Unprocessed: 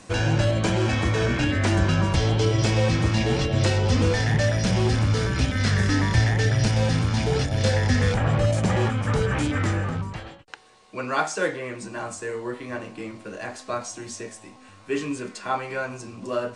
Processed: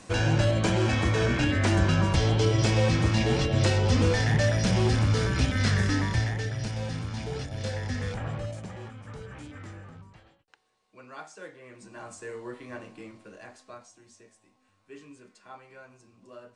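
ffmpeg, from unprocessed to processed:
ffmpeg -i in.wav -af "volume=9dB,afade=type=out:start_time=5.64:duration=0.86:silence=0.354813,afade=type=out:start_time=8.25:duration=0.47:silence=0.398107,afade=type=in:start_time=11.54:duration=0.74:silence=0.281838,afade=type=out:start_time=12.84:duration=1.08:silence=0.251189" out.wav

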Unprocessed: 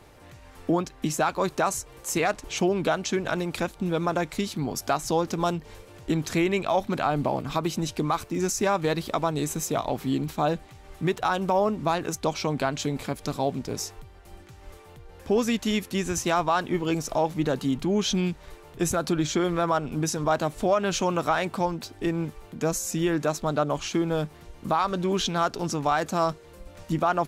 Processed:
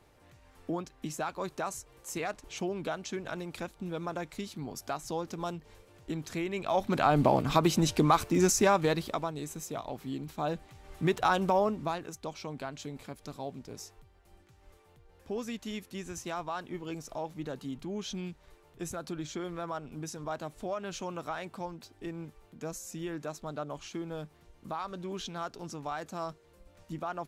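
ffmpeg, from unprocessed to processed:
ffmpeg -i in.wav -af "volume=12dB,afade=type=in:start_time=6.53:duration=0.73:silence=0.237137,afade=type=out:start_time=8.41:duration=0.93:silence=0.223872,afade=type=in:start_time=10.26:duration=1.05:silence=0.316228,afade=type=out:start_time=11.31:duration=0.77:silence=0.251189" out.wav

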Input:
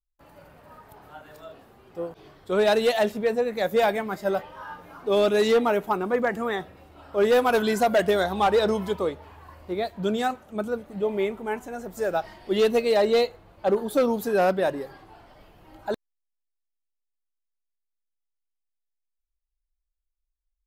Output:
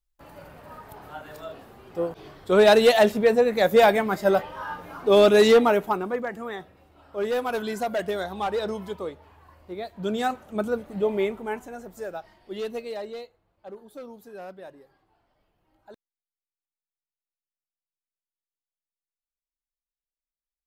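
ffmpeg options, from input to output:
ffmpeg -i in.wav -af "volume=13.5dB,afade=type=out:start_time=5.45:duration=0.79:silence=0.266073,afade=type=in:start_time=9.87:duration=0.58:silence=0.375837,afade=type=out:start_time=11.01:duration=1.19:silence=0.223872,afade=type=out:start_time=12.78:duration=0.48:silence=0.398107" out.wav

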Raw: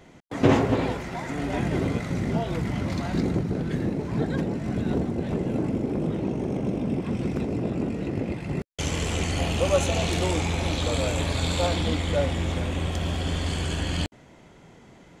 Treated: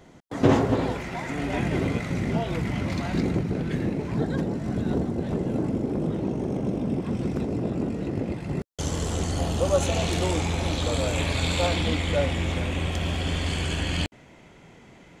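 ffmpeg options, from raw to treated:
ffmpeg -i in.wav -af "asetnsamples=nb_out_samples=441:pad=0,asendcmd='0.95 equalizer g 4;4.14 equalizer g -4.5;8.71 equalizer g -12;9.82 equalizer g -2;11.13 equalizer g 5',equalizer=frequency=2400:width_type=o:width=0.69:gain=-4.5" out.wav

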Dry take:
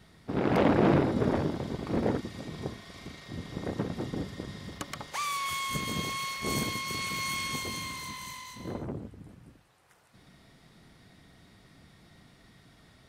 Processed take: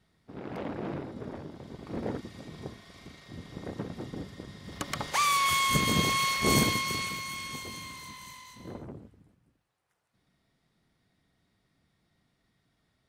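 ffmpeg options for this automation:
ffmpeg -i in.wav -af "volume=7dB,afade=type=in:start_time=1.48:duration=0.75:silence=0.375837,afade=type=in:start_time=4.63:duration=0.42:silence=0.266073,afade=type=out:start_time=6.58:duration=0.65:silence=0.251189,afade=type=out:start_time=8.76:duration=0.62:silence=0.281838" out.wav

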